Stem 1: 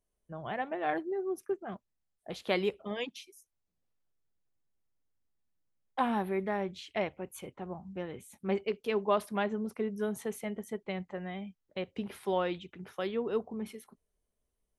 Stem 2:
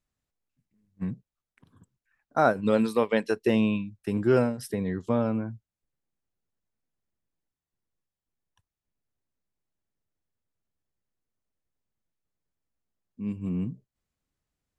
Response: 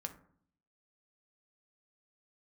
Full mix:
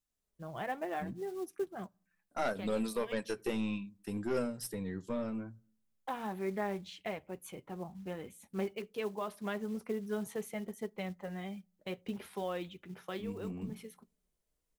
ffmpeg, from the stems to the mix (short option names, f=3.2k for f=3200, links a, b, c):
-filter_complex "[0:a]acrusher=bits=6:mode=log:mix=0:aa=0.000001,dynaudnorm=f=110:g=3:m=6.5dB,alimiter=limit=-18dB:level=0:latency=1:release=308,adelay=100,volume=-5.5dB,asplit=2[a][b];[b]volume=-20dB[c];[1:a]highshelf=f=4.5k:g=12,bandreject=f=60:t=h:w=6,bandreject=f=120:t=h:w=6,bandreject=f=180:t=h:w=6,aeval=exprs='(tanh(7.08*val(0)+0.35)-tanh(0.35))/7.08':c=same,volume=-5.5dB,asplit=3[d][e][f];[e]volume=-13.5dB[g];[f]apad=whole_len=656646[h];[a][h]sidechaincompress=threshold=-44dB:ratio=8:attack=25:release=147[i];[2:a]atrim=start_sample=2205[j];[c][g]amix=inputs=2:normalize=0[k];[k][j]afir=irnorm=-1:irlink=0[l];[i][d][l]amix=inputs=3:normalize=0,flanger=delay=3.8:depth=2.6:regen=-60:speed=0.72:shape=sinusoidal"